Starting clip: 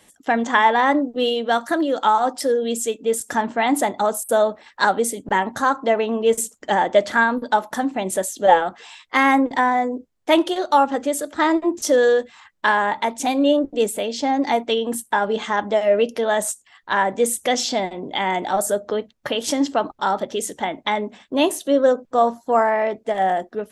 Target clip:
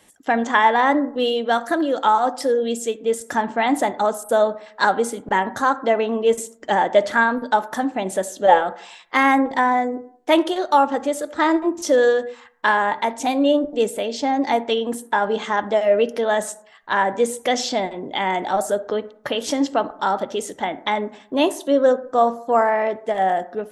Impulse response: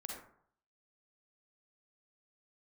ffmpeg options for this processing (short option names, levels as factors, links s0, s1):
-filter_complex "[0:a]asplit=2[s0][s1];[s1]highpass=200[s2];[1:a]atrim=start_sample=2205,lowpass=2700[s3];[s2][s3]afir=irnorm=-1:irlink=0,volume=0.282[s4];[s0][s4]amix=inputs=2:normalize=0,acrossover=split=7200[s5][s6];[s6]acompressor=threshold=0.0178:ratio=4:attack=1:release=60[s7];[s5][s7]amix=inputs=2:normalize=0,volume=0.891"